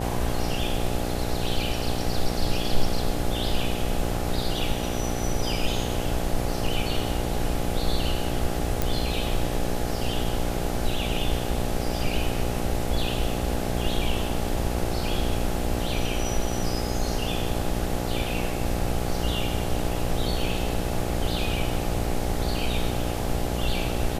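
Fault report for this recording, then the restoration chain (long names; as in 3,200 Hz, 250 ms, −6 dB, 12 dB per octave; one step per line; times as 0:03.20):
mains buzz 60 Hz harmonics 14 −30 dBFS
0:08.82: click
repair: click removal
hum removal 60 Hz, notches 14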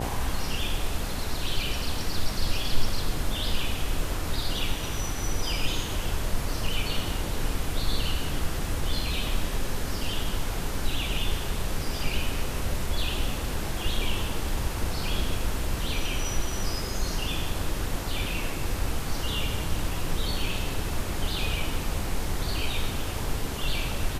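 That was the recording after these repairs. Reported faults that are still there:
none of them is left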